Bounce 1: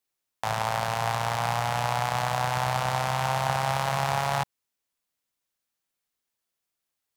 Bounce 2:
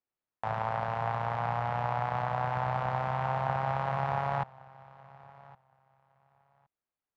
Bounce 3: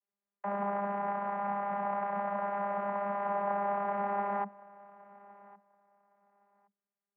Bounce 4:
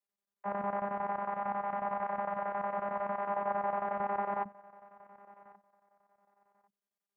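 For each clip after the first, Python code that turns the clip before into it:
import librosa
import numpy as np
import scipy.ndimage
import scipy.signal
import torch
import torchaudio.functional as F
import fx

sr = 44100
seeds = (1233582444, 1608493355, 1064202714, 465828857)

y1 = scipy.signal.sosfilt(scipy.signal.butter(2, 1600.0, 'lowpass', fs=sr, output='sos'), x)
y1 = fx.echo_feedback(y1, sr, ms=1115, feedback_pct=17, wet_db=-22.0)
y1 = y1 * 10.0 ** (-3.5 / 20.0)
y2 = fx.ladder_lowpass(y1, sr, hz=2600.0, resonance_pct=30)
y2 = fx.vocoder(y2, sr, bands=32, carrier='saw', carrier_hz=201.0)
y2 = y2 * 10.0 ** (5.0 / 20.0)
y3 = fx.low_shelf(y2, sr, hz=160.0, db=-5.0)
y3 = fx.chopper(y3, sr, hz=11.0, depth_pct=65, duty_pct=75)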